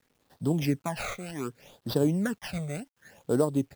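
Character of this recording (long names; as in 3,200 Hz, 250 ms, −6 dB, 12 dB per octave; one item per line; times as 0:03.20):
aliases and images of a low sample rate 8,300 Hz, jitter 0%
phaser sweep stages 12, 0.66 Hz, lowest notch 290–2,300 Hz
a quantiser's noise floor 12 bits, dither none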